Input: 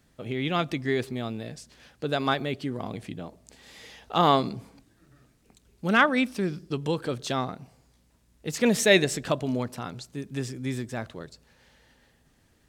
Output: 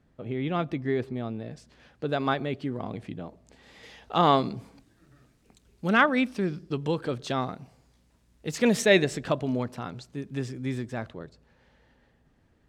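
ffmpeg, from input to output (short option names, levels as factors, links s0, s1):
-af "asetnsamples=n=441:p=0,asendcmd='1.51 lowpass f 2100;3.83 lowpass f 4200;4.57 lowpass f 8200;5.9 lowpass f 3500;7.42 lowpass f 6700;8.82 lowpass f 3100;11.1 lowpass f 1400',lowpass=f=1100:p=1"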